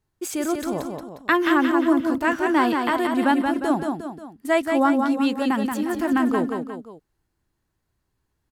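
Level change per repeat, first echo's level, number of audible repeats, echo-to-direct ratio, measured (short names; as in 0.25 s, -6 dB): -6.0 dB, -5.0 dB, 3, -4.0 dB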